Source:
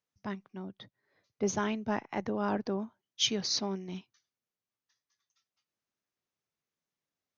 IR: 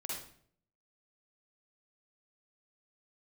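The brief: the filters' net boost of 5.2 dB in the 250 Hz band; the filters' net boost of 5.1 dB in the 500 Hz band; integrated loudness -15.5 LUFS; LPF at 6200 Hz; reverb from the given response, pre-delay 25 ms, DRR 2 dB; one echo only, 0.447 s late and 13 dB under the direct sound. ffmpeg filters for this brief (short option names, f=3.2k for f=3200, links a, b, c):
-filter_complex "[0:a]lowpass=6.2k,equalizer=f=250:t=o:g=6,equalizer=f=500:t=o:g=4.5,aecho=1:1:447:0.224,asplit=2[a][b];[1:a]atrim=start_sample=2205,adelay=25[c];[b][c]afir=irnorm=-1:irlink=0,volume=-2.5dB[d];[a][d]amix=inputs=2:normalize=0,volume=13dB"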